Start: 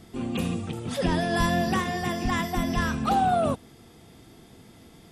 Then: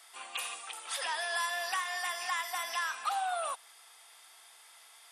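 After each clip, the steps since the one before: high-pass 900 Hz 24 dB/octave; peaking EQ 9.2 kHz +10.5 dB 0.2 oct; compression 2.5:1, threshold -33 dBFS, peak gain reduction 6.5 dB; trim +1 dB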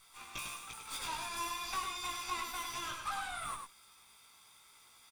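comb filter that takes the minimum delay 0.84 ms; chorus 0.4 Hz, delay 16.5 ms, depth 2 ms; on a send: delay 100 ms -5.5 dB; on the sum: trim -1 dB

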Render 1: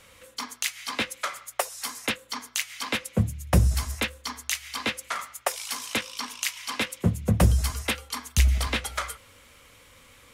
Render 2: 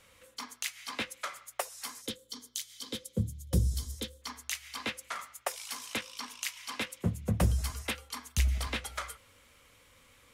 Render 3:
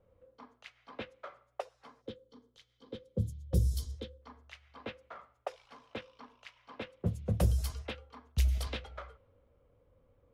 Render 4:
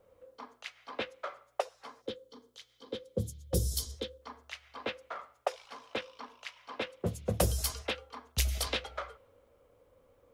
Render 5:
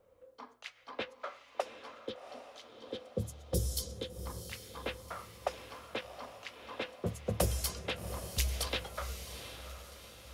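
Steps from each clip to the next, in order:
time-frequency box 2.01–4.22 s, 550–3000 Hz -14 dB; trim -7.5 dB
graphic EQ 250/500/1000/2000/8000 Hz -6/+3/-6/-8/-6 dB; level-controlled noise filter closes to 730 Hz, open at -27 dBFS
tone controls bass -11 dB, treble +5 dB; trim +7 dB
echo that smears into a reverb 754 ms, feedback 48%, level -9.5 dB; trim -2.5 dB

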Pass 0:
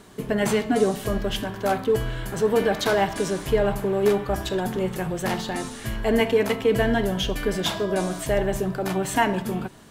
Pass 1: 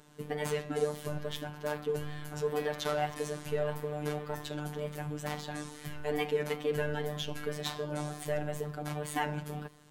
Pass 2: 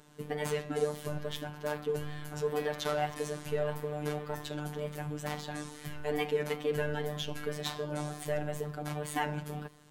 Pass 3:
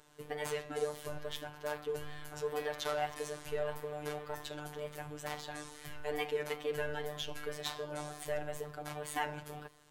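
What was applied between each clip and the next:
wow and flutter 140 cents; robot voice 149 Hz; trim -8.5 dB
no audible change
peaking EQ 200 Hz -14.5 dB 1 oct; trim -2 dB

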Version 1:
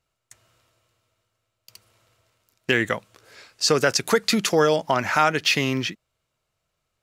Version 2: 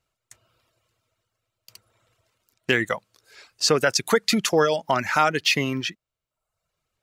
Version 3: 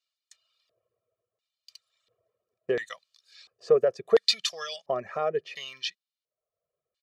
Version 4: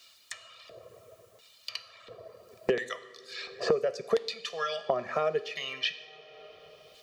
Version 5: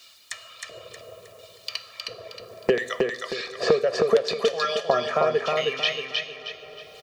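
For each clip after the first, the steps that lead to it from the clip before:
reverb removal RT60 0.77 s
comb 1.7 ms, depth 86%; LFO band-pass square 0.72 Hz 410–4100 Hz
two-slope reverb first 0.65 s, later 3.2 s, from -28 dB, DRR 10.5 dB; three bands compressed up and down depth 100%; trim -1.5 dB
feedback delay 314 ms, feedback 36%, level -3 dB; trim +6 dB

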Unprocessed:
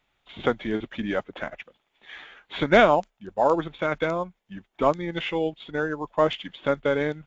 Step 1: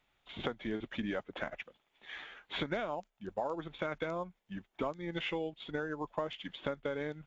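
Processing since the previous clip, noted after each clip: compression 10:1, threshold -29 dBFS, peak gain reduction 18.5 dB; trim -3.5 dB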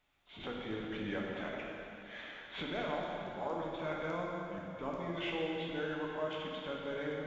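transient shaper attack -8 dB, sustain -1 dB; plate-style reverb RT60 3.2 s, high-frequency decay 0.9×, DRR -3 dB; trim -3 dB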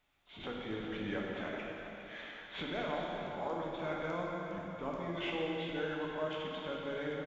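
delay 409 ms -11 dB

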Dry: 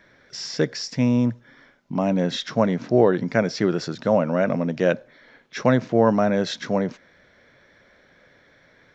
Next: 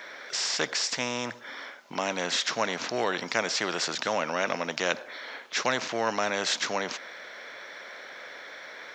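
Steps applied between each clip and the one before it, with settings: high-pass 620 Hz 12 dB/octave; spectrum-flattening compressor 2:1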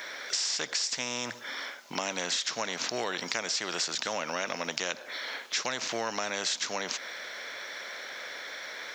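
treble shelf 3.6 kHz +11.5 dB; compression, threshold -28 dBFS, peak gain reduction 11 dB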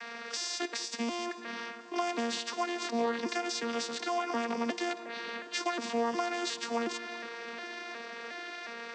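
vocoder on a broken chord bare fifth, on A#3, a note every 361 ms; filtered feedback delay 191 ms, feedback 77%, low-pass 3.2 kHz, level -17 dB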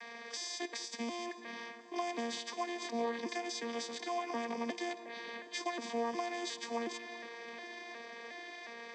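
rattle on loud lows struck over -50 dBFS, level -40 dBFS; comb of notches 1.4 kHz; trim -4.5 dB

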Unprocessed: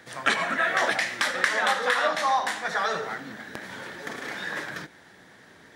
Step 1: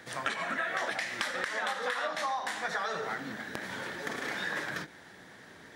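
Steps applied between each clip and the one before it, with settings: compression 6:1, threshold -30 dBFS, peak gain reduction 13 dB; endings held to a fixed fall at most 260 dB/s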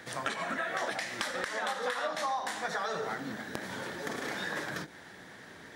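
dynamic bell 2.1 kHz, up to -5 dB, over -45 dBFS, Q 0.74; trim +2 dB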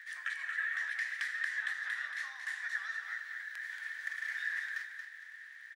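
crackle 97 per s -44 dBFS; ladder high-pass 1.7 kHz, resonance 80%; feedback delay 229 ms, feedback 35%, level -7 dB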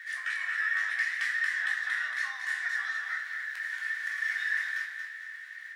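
in parallel at -7 dB: saturation -34.5 dBFS, distortion -12 dB; on the sum: reverberation RT60 0.35 s, pre-delay 3 ms, DRR -2 dB

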